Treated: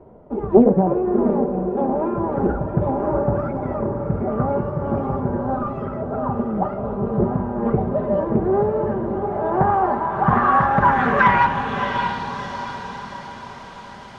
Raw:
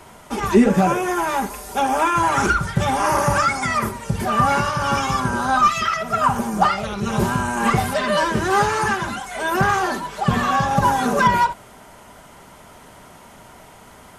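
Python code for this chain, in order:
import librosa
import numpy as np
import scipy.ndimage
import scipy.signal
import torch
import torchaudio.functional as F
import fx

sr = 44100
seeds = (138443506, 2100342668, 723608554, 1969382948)

y = fx.echo_diffused(x, sr, ms=680, feedback_pct=50, wet_db=-6.0)
y = fx.filter_sweep_lowpass(y, sr, from_hz=490.0, to_hz=4600.0, start_s=9.04, end_s=12.46, q=1.8)
y = fx.doppler_dist(y, sr, depth_ms=0.39)
y = y * librosa.db_to_amplitude(-1.0)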